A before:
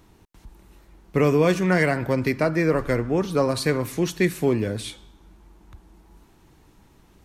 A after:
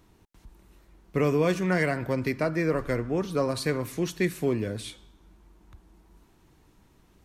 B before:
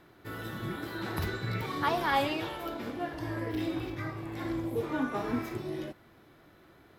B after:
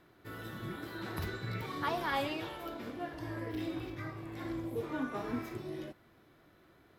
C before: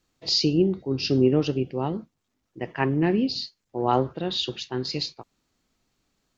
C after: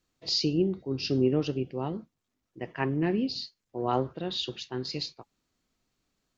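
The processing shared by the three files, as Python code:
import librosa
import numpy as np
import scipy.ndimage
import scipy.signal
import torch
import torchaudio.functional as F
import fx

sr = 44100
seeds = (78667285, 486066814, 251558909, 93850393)

y = fx.notch(x, sr, hz=840.0, q=22.0)
y = y * 10.0 ** (-5.0 / 20.0)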